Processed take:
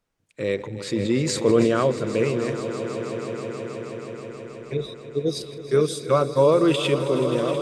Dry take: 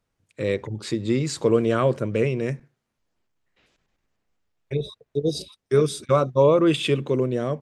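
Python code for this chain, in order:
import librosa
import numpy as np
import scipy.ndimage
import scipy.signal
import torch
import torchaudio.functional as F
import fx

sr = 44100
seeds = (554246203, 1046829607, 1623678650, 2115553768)

p1 = fx.peak_eq(x, sr, hz=79.0, db=-6.5, octaves=1.6)
p2 = p1 + fx.echo_swell(p1, sr, ms=160, loudest=5, wet_db=-14, dry=0)
y = fx.sustainer(p2, sr, db_per_s=30.0, at=(0.56, 1.87))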